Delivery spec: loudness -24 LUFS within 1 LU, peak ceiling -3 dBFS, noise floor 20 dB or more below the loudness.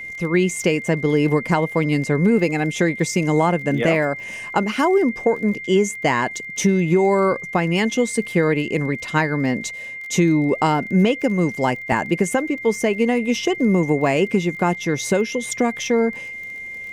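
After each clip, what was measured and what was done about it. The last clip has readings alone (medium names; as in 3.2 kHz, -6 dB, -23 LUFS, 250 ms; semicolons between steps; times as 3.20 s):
tick rate 30 per s; steady tone 2.1 kHz; tone level -30 dBFS; loudness -20.0 LUFS; peak level -5.0 dBFS; loudness target -24.0 LUFS
-> de-click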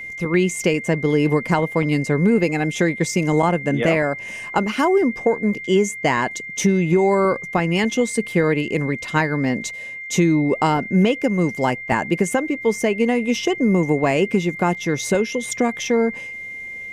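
tick rate 0 per s; steady tone 2.1 kHz; tone level -30 dBFS
-> band-stop 2.1 kHz, Q 30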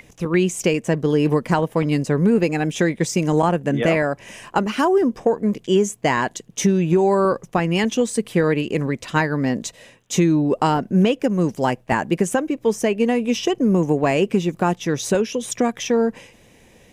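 steady tone not found; loudness -20.0 LUFS; peak level -5.5 dBFS; loudness target -24.0 LUFS
-> trim -4 dB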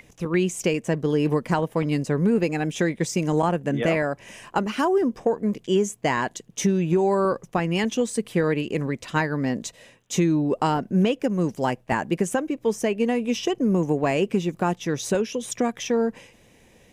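loudness -24.0 LUFS; peak level -9.5 dBFS; noise floor -56 dBFS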